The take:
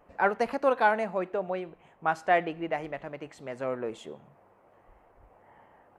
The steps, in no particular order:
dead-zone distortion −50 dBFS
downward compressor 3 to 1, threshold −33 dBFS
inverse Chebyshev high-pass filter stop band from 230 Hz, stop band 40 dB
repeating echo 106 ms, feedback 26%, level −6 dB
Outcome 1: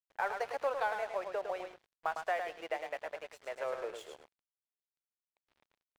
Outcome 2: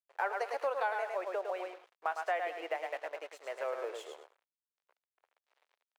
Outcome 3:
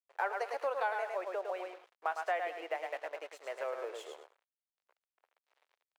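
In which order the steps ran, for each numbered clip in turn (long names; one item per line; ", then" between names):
inverse Chebyshev high-pass filter, then downward compressor, then repeating echo, then dead-zone distortion
repeating echo, then dead-zone distortion, then inverse Chebyshev high-pass filter, then downward compressor
repeating echo, then dead-zone distortion, then downward compressor, then inverse Chebyshev high-pass filter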